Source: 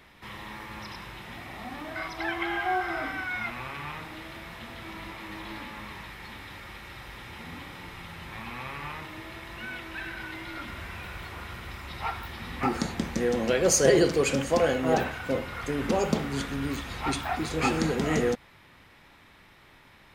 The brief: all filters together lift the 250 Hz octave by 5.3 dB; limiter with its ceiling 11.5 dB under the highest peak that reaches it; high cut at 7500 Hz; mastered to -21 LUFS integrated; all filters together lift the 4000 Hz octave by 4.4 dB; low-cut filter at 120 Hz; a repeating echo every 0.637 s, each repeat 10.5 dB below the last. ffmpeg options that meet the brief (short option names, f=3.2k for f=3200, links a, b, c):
-af "highpass=120,lowpass=7.5k,equalizer=f=250:t=o:g=7,equalizer=f=4k:t=o:g=6,alimiter=limit=-16.5dB:level=0:latency=1,aecho=1:1:637|1274|1911:0.299|0.0896|0.0269,volume=9dB"